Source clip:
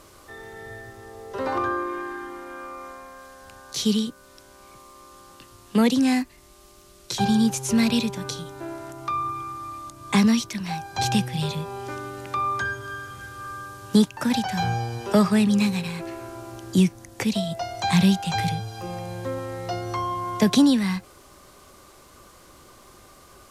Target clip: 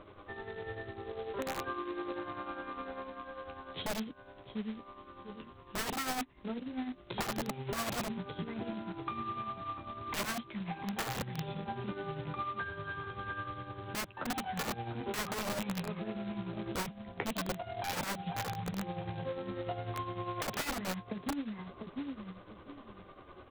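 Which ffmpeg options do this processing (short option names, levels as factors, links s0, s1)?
-filter_complex "[0:a]lowpass=f=2400:p=1,asplit=2[s0][s1];[s1]adelay=696,lowpass=f=1800:p=1,volume=0.316,asplit=2[s2][s3];[s3]adelay=696,lowpass=f=1800:p=1,volume=0.24,asplit=2[s4][s5];[s5]adelay=696,lowpass=f=1800:p=1,volume=0.24[s6];[s2][s4][s6]amix=inputs=3:normalize=0[s7];[s0][s7]amix=inputs=2:normalize=0,flanger=delay=9.7:depth=7.1:regen=-21:speed=0.22:shape=sinusoidal,equalizer=f=320:w=0.32:g=4,aresample=8000,acrusher=bits=3:mode=log:mix=0:aa=0.000001,aresample=44100,aeval=exprs='(mod(7.5*val(0)+1,2)-1)/7.5':c=same,acompressor=threshold=0.02:ratio=6,tremolo=f=10:d=0.57,volume=1.12"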